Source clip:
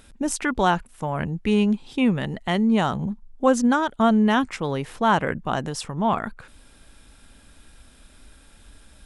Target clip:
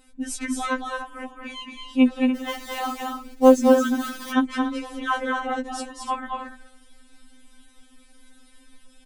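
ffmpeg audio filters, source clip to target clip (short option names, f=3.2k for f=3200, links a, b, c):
-filter_complex "[0:a]aecho=1:1:221.6|288.6:0.631|0.282,asettb=1/sr,asplit=3[a][b][c];[a]atrim=end=2.354[d];[b]atrim=start=2.35:end=4.31,asetpts=PTS-STARTPTS,afade=t=in:d=0.004:c=qsin,afade=t=out:st=1.956:d=0.004:c=qsin,acrusher=bits=4:mode=log:mix=0:aa=0.000001[e];[c]atrim=start=4.306[f];[d][e]acrossfade=d=0.004:c1=hsin:c2=qsin[g];[g][f]acrossfade=d=0.004:c1=qsin:c2=hsin,afftfilt=real='re*3.46*eq(mod(b,12),0)':imag='im*3.46*eq(mod(b,12),0)':win_size=2048:overlap=0.75,volume=-2dB"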